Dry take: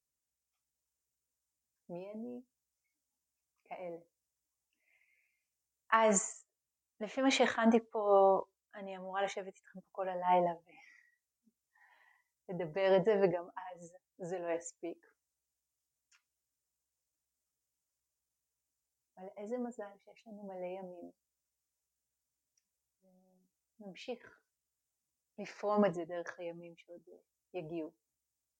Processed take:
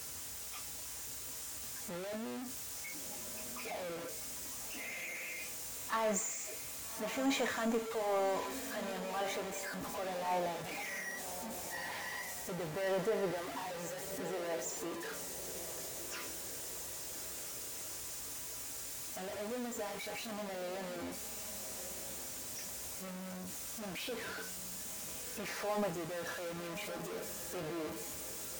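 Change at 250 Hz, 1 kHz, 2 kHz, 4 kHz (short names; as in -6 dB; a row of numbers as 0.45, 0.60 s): -2.5, -3.5, +2.0, +4.5 dB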